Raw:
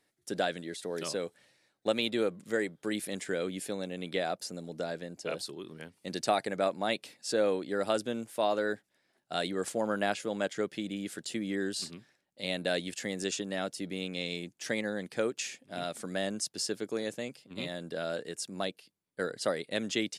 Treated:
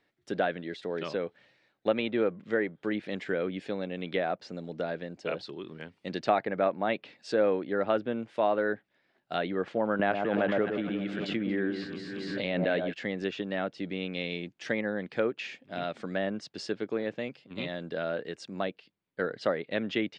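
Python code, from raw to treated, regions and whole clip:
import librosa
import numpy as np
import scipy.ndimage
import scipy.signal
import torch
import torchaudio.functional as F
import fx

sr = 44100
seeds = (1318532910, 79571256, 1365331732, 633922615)

y = fx.chain(x, sr, fx.echo_alternate(ms=116, hz=1300.0, feedback_pct=70, wet_db=-6.5),
    fx.pre_swell(db_per_s=23.0), at=(9.99, 12.93))
y = scipy.signal.sosfilt(scipy.signal.cheby1(2, 1.0, 2900.0, 'lowpass', fs=sr, output='sos'), y)
y = fx.env_lowpass_down(y, sr, base_hz=2300.0, full_db=-30.0)
y = y * librosa.db_to_amplitude(3.5)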